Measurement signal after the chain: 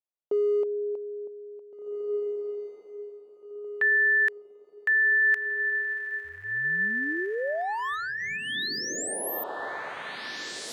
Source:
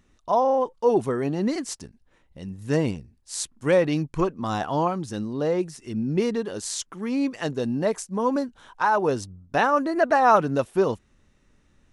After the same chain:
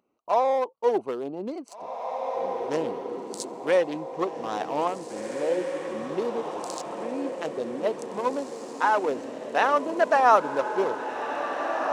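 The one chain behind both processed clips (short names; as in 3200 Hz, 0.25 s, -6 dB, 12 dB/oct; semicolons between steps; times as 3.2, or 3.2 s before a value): Wiener smoothing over 25 samples; HPF 440 Hz 12 dB/oct; on a send: diffused feedback echo 1.917 s, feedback 46%, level -5 dB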